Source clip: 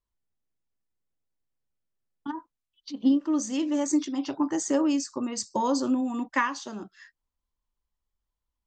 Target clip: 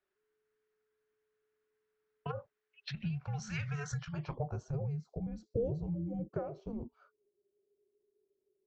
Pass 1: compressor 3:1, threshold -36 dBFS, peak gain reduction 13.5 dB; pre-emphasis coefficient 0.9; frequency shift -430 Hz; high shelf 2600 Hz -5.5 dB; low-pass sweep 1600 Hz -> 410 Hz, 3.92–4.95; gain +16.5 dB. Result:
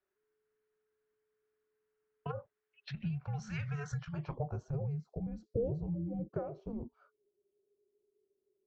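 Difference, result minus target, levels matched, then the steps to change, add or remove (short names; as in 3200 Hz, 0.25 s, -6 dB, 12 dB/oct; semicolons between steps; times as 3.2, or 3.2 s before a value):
4000 Hz band -5.0 dB
change: high shelf 2600 Hz +2.5 dB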